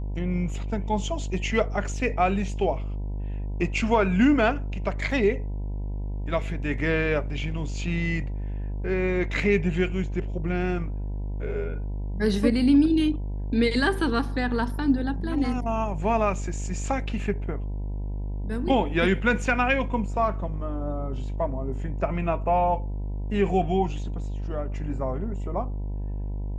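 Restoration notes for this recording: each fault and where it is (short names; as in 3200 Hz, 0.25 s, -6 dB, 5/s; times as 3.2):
buzz 50 Hz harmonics 20 -30 dBFS
5.11 gap 2.8 ms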